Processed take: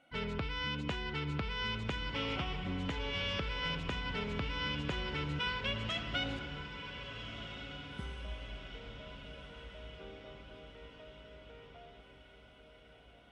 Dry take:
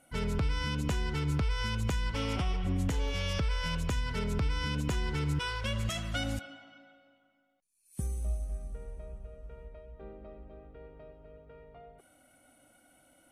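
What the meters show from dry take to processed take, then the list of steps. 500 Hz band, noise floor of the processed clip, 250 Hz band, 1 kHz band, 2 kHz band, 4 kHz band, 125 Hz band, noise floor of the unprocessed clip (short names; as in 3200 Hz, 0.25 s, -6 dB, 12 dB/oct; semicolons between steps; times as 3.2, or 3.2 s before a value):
-2.5 dB, -59 dBFS, -4.5 dB, -1.5 dB, +0.5 dB, +1.5 dB, -8.0 dB, -69 dBFS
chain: synth low-pass 3200 Hz, resonance Q 1.6; low shelf 130 Hz -10.5 dB; on a send: diffused feedback echo 1.469 s, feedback 56%, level -9 dB; on the sum: gain -2.5 dB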